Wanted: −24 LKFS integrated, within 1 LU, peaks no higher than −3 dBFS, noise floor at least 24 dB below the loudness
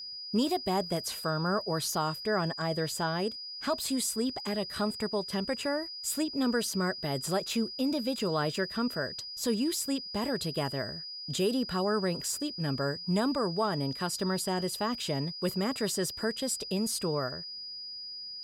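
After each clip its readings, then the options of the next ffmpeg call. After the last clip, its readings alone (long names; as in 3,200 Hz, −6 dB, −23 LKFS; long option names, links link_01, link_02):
interfering tone 4,900 Hz; level of the tone −39 dBFS; integrated loudness −31.5 LKFS; sample peak −17.5 dBFS; target loudness −24.0 LKFS
→ -af "bandreject=frequency=4900:width=30"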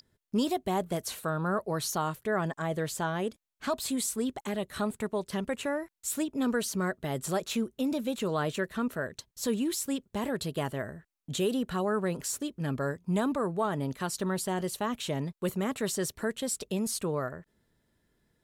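interfering tone none found; integrated loudness −32.0 LKFS; sample peak −18.0 dBFS; target loudness −24.0 LKFS
→ -af "volume=8dB"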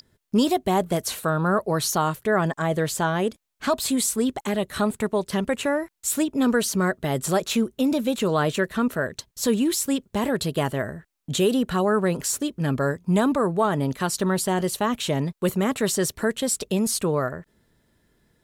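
integrated loudness −24.0 LKFS; sample peak −10.0 dBFS; background noise floor −71 dBFS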